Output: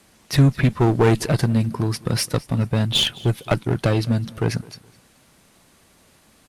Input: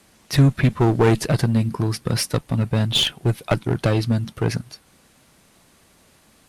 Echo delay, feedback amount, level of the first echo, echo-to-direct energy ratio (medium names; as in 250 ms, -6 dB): 210 ms, 31%, -22.0 dB, -21.5 dB